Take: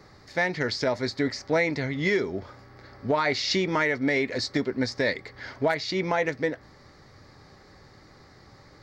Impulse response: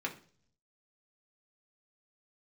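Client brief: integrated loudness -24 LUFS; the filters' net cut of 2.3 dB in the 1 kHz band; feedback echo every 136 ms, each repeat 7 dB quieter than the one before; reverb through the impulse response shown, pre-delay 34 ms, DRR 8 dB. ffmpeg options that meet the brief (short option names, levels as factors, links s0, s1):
-filter_complex "[0:a]equalizer=f=1000:t=o:g=-3,aecho=1:1:136|272|408|544|680:0.447|0.201|0.0905|0.0407|0.0183,asplit=2[s0][s1];[1:a]atrim=start_sample=2205,adelay=34[s2];[s1][s2]afir=irnorm=-1:irlink=0,volume=0.266[s3];[s0][s3]amix=inputs=2:normalize=0,volume=1.26"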